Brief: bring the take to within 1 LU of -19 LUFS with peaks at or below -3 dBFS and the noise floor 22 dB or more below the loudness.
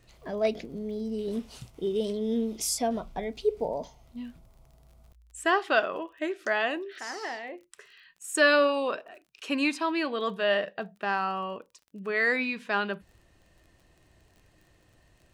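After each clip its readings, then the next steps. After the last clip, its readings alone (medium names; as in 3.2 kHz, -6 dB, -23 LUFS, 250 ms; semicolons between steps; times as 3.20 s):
tick rate 30 per s; loudness -29.0 LUFS; peak level -11.5 dBFS; loudness target -19.0 LUFS
-> de-click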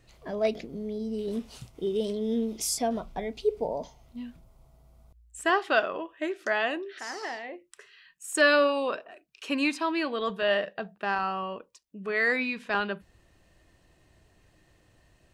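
tick rate 0.065 per s; loudness -29.0 LUFS; peak level -11.5 dBFS; loudness target -19.0 LUFS
-> trim +10 dB; peak limiter -3 dBFS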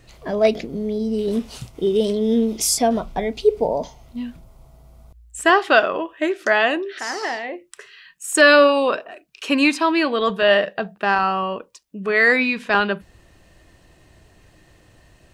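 loudness -19.0 LUFS; peak level -3.0 dBFS; noise floor -54 dBFS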